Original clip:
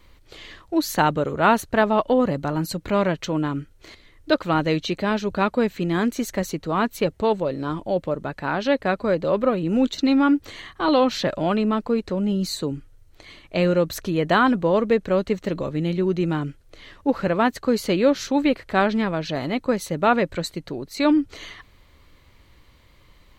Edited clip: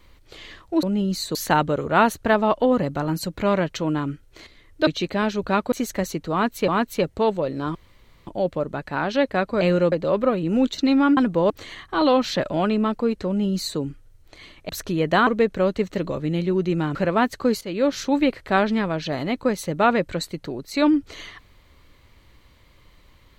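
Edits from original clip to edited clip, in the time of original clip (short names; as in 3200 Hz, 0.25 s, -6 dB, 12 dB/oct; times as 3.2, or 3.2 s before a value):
4.35–4.75 cut
5.6–6.11 cut
6.71–7.07 loop, 2 plays
7.78 insert room tone 0.52 s
12.14–12.66 copy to 0.83
13.56–13.87 move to 9.12
14.45–14.78 move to 10.37
16.46–17.18 cut
17.84–18.18 fade in, from -17.5 dB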